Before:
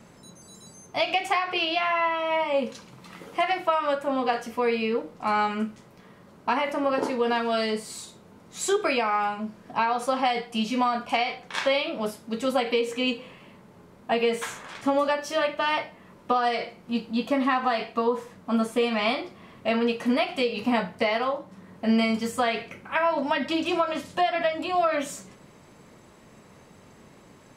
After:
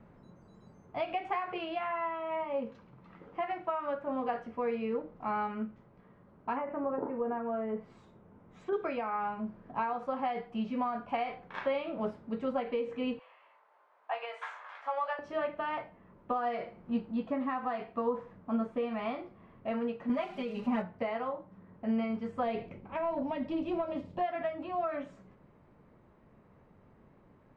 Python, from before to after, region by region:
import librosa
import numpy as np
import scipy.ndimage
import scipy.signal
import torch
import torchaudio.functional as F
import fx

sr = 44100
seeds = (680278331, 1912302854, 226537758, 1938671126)

y = fx.chain(x, sr, fx.env_lowpass_down(base_hz=1200.0, full_db=-22.0),
    fx.peak_eq(hz=4300.0, db=-9.5, octaves=0.32), at=(6.56, 8.73))
y = fx.chain(y, sr, fx.highpass(hz=710.0, slope=24),
    fx.doubler(ms=20.0, db=-5.5), at=(13.19, 15.19))
y = fx.chain(y, sr, fx.crossing_spikes(level_db=-26.0),
    fx.comb(ms=5.0, depth=0.92), at=(20.09, 20.82))
y = fx.chain(y, sr, fx.peak_eq(hz=1500.0, db=-14.0, octaves=1.0),
    fx.notch(hz=6100.0, q=25.0),
    fx.leveller(passes=1), at=(22.43, 24.21))
y = scipy.signal.sosfilt(scipy.signal.butter(2, 1600.0, 'lowpass', fs=sr, output='sos'), y)
y = fx.rider(y, sr, range_db=4, speed_s=0.5)
y = fx.low_shelf(y, sr, hz=83.0, db=10.0)
y = F.gain(torch.from_numpy(y), -8.0).numpy()